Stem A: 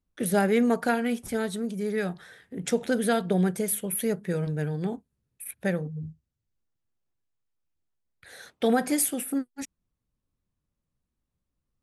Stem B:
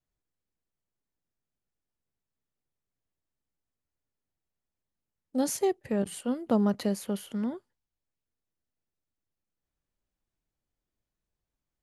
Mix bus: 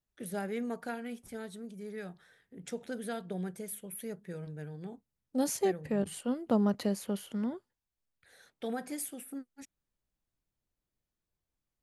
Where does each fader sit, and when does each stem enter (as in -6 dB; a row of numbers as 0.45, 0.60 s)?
-13.5, -2.5 dB; 0.00, 0.00 s